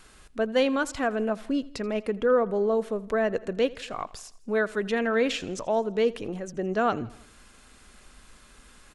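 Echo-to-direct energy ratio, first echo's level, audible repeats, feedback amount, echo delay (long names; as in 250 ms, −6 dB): −19.5 dB, −21.0 dB, 3, 57%, 82 ms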